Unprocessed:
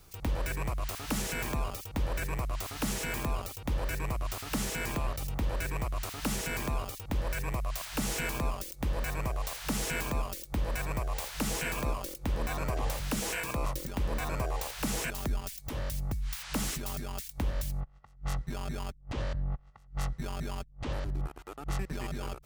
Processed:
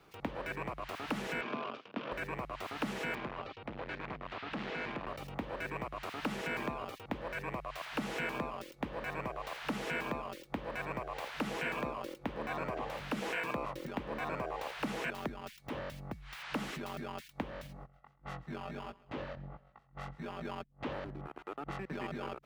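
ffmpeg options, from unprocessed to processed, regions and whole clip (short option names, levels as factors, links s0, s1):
-filter_complex "[0:a]asettb=1/sr,asplit=3[s0][s1][s2];[s0]atrim=end=1.414[s3];[s1]atrim=start=1.41:end=2.12,asetpts=PTS-STARTPTS,afade=t=in:d=0.004:c=qsin,afade=t=out:st=0.706:d=0.004:c=qsin,acrusher=bits=7:dc=4:mix=0:aa=0.000001,highpass=f=160:w=0.5412,highpass=f=160:w=1.3066,equalizer=f=170:t=q:w=4:g=-8,equalizer=f=330:t=q:w=4:g=-5,equalizer=f=530:t=q:w=4:g=-4,equalizer=f=830:t=q:w=4:g=-9,equalizer=f=1900:t=q:w=4:g=-8,equalizer=f=4100:t=q:w=4:g=-5,lowpass=f=4400:w=0.5412,lowpass=f=4400:w=1.3066[s4];[s2]atrim=start=2.116[s5];[s3][s4]acrossfade=d=0.004:c1=hsin:c2=qsin[s6];[s6][s5]acrossfade=d=0.004:c1=qsin:c2=hsin,asettb=1/sr,asplit=3[s7][s8][s9];[s7]atrim=end=3.154[s10];[s8]atrim=start=3.15:end=5.07,asetpts=PTS-STARTPTS,afade=t=in:d=0.004:c=qsin,afade=t=out:st=1.916:d=0.004:c=qsin,lowpass=f=4300:w=0.5412,lowpass=f=4300:w=1.3066,asoftclip=type=hard:threshold=0.0168[s11];[s9]atrim=start=5.066[s12];[s10][s11]acrossfade=d=0.004:c1=hsin:c2=qsin[s13];[s13][s12]acrossfade=d=0.004:c1=qsin:c2=hsin,asettb=1/sr,asplit=3[s14][s15][s16];[s14]atrim=end=17.674[s17];[s15]atrim=start=17.67:end=20.45,asetpts=PTS-STARTPTS,afade=t=in:d=0.004:c=qsin,afade=t=out:st=2.776:d=0.004:c=qsin,aecho=1:1:131|262|393:0.0891|0.041|0.0189,atrim=end_sample=122598,flanger=delay=16:depth=7.2:speed=1.5[s18];[s16]atrim=start=20.446[s19];[s17][s18]acrossfade=d=0.004:c1=hsin:c2=qsin[s20];[s20][s19]acrossfade=d=0.004:c1=qsin:c2=hsin,acompressor=threshold=0.0282:ratio=6,acrossover=split=160 3400:gain=0.1 1 0.1[s21][s22][s23];[s21][s22][s23]amix=inputs=3:normalize=0,volume=1.26"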